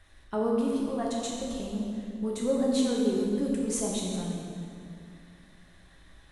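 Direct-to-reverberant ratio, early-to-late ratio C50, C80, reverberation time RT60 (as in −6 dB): −3.5 dB, 0.0 dB, 1.5 dB, 2.4 s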